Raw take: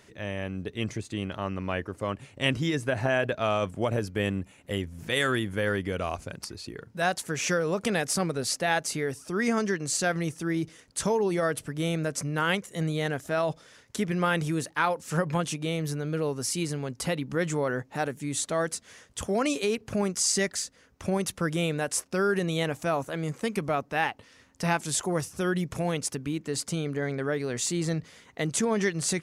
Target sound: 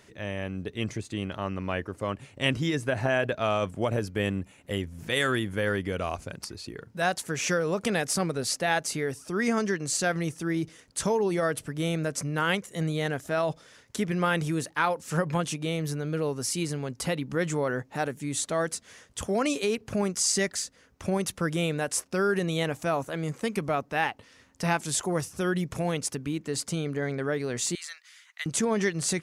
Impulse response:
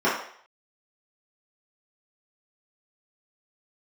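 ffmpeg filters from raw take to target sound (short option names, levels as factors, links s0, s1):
-filter_complex "[0:a]asettb=1/sr,asplit=3[s0][s1][s2];[s0]atrim=end=27.754[s3];[s1]atrim=start=27.75:end=28.46,asetpts=PTS-STARTPTS,afade=t=in:d=0.004:c=qsin,afade=t=out:st=0.706:d=0.004:c=qsin,highpass=f=1400:w=0.5412,highpass=f=1400:w=1.3066[s4];[s2]atrim=start=28.456[s5];[s3][s4]acrossfade=d=0.004:c1=hsin:c2=qsin[s6];[s6][s5]acrossfade=d=0.004:c1=qsin:c2=hsin"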